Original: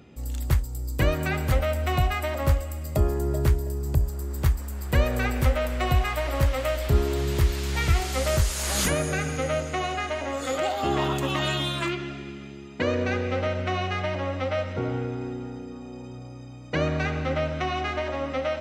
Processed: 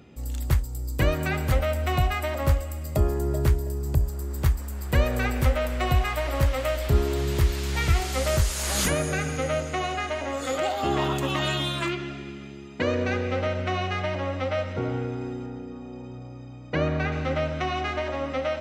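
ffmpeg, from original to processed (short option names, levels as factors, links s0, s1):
-filter_complex "[0:a]asettb=1/sr,asplit=3[s0][s1][s2];[s0]atrim=end=15.464[s3];[s1]atrim=start=15.46:end=17.12,asetpts=PTS-STARTPTS,afade=t=in:d=0.004:c=qsin,afade=t=out:st=1.656:d=0.004:c=qsin,aemphasis=mode=reproduction:type=50fm[s4];[s2]atrim=start=17.116[s5];[s3][s4]acrossfade=d=0.004:c1=hsin:c2=qsin[s6];[s6][s5]acrossfade=d=0.004:c1=qsin:c2=hsin"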